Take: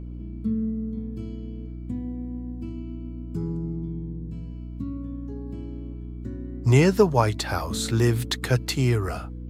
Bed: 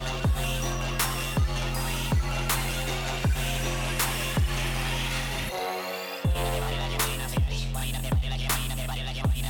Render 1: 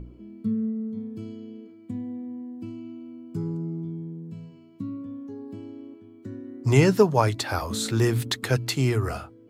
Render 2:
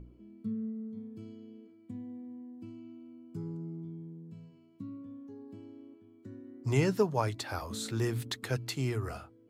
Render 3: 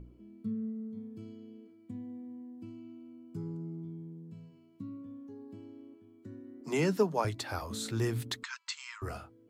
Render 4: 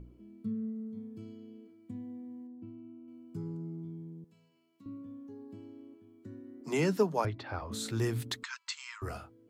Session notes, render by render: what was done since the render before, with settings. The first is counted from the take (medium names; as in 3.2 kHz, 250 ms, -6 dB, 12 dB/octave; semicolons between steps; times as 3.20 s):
de-hum 60 Hz, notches 5
trim -9.5 dB
6.61–7.25 s: steep high-pass 150 Hz 72 dB/octave; 8.43–9.02 s: brick-wall FIR band-pass 900–8200 Hz
2.47–3.08 s: tape spacing loss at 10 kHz 38 dB; 4.24–4.86 s: high-pass 1.2 kHz 6 dB/octave; 7.25–7.72 s: distance through air 300 m